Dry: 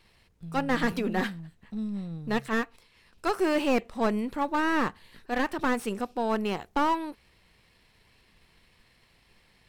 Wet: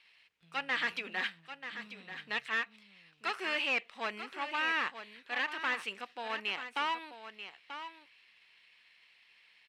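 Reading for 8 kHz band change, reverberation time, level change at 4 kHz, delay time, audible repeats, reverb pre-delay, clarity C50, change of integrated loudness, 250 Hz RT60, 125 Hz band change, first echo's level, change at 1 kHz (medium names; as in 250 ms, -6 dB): -9.5 dB, no reverb, +2.5 dB, 936 ms, 1, no reverb, no reverb, -6.5 dB, no reverb, under -20 dB, -10.5 dB, -8.0 dB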